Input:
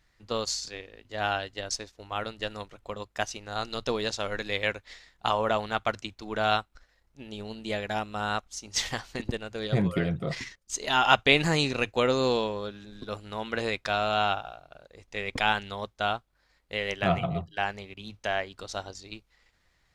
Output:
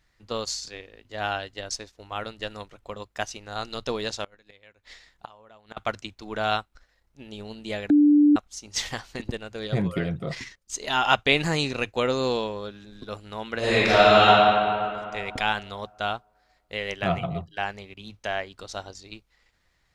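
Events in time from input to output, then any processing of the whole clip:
4.24–5.77 s: inverted gate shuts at -20 dBFS, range -26 dB
7.90–8.36 s: bleep 294 Hz -13 dBFS
13.58–14.27 s: reverb throw, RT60 2.4 s, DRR -12 dB

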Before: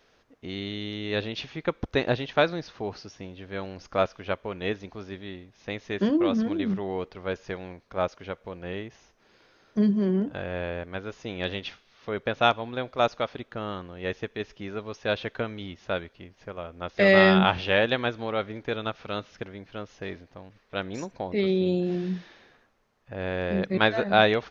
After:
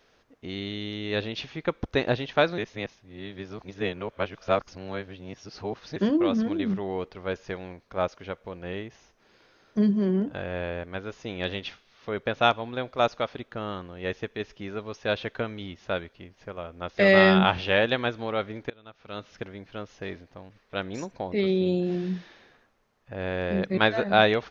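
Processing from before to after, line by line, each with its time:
2.58–5.96 s: reverse
18.70–19.33 s: fade in quadratic, from -23.5 dB

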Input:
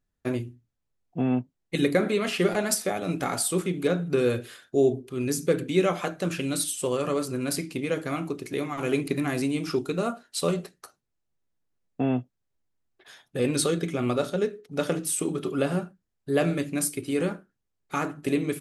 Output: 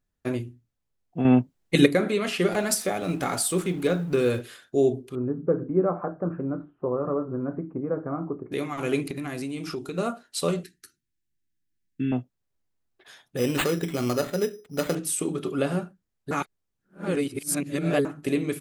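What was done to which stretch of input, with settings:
1.25–1.86 s: gain +7 dB
2.52–4.42 s: companding laws mixed up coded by mu
5.15–8.52 s: steep low-pass 1.3 kHz
9.08–9.98 s: compression 3:1, threshold -30 dBFS
10.63–12.12 s: elliptic band-stop 350–1600 Hz
13.37–14.95 s: careless resampling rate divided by 8×, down none, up hold
16.31–18.05 s: reverse

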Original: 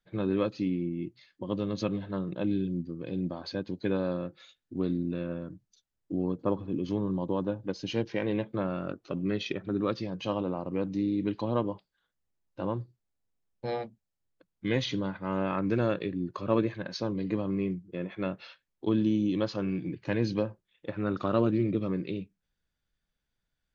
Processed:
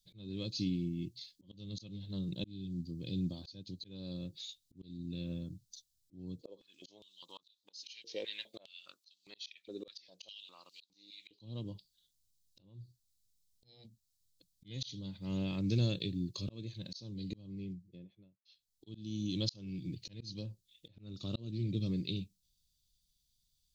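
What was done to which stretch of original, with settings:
6.41–11.39 s: step-sequenced high-pass 4.9 Hz 480–4100 Hz
12.60–13.85 s: compression, threshold -38 dBFS
17.10–18.45 s: studio fade out
whole clip: FFT filter 110 Hz 0 dB, 1.5 kHz -28 dB, 4 kHz +10 dB; slow attack 514 ms; trim +3 dB

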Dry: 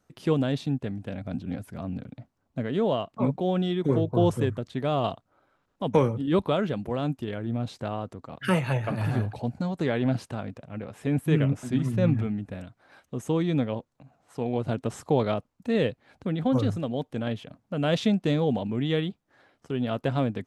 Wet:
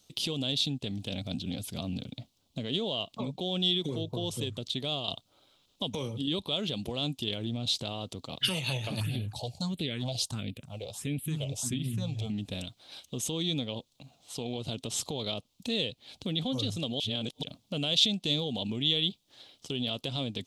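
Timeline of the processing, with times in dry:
4.52–5.08 s: fade out, to -15 dB
9.00–12.30 s: phase shifter stages 4, 1.5 Hz, lowest notch 230–1100 Hz
17.00–17.43 s: reverse
whole clip: compression 6:1, threshold -29 dBFS; peak limiter -25 dBFS; resonant high shelf 2.4 kHz +13 dB, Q 3

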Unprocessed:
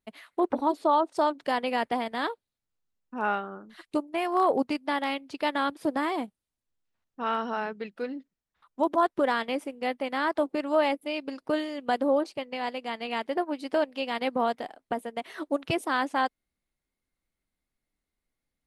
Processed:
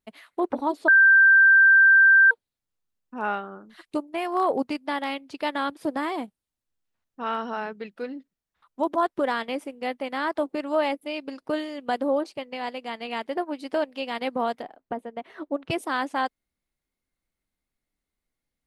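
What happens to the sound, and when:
0.88–2.31 s: bleep 1.57 kHz -11.5 dBFS
14.62–15.70 s: low-pass 1.3 kHz 6 dB/octave

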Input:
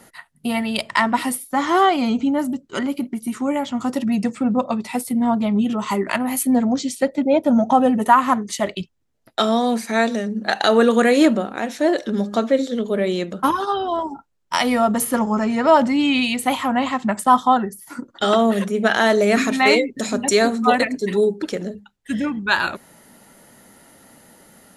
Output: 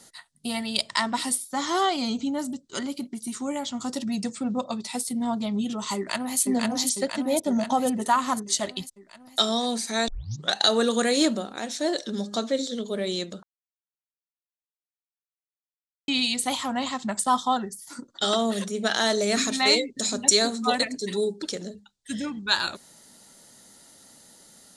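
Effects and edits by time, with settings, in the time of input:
5.96–6.39 s: echo throw 500 ms, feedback 65%, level -1.5 dB
10.08 s: tape start 0.46 s
13.43–16.08 s: mute
whole clip: high-order bell 5.7 kHz +13 dB; trim -8.5 dB

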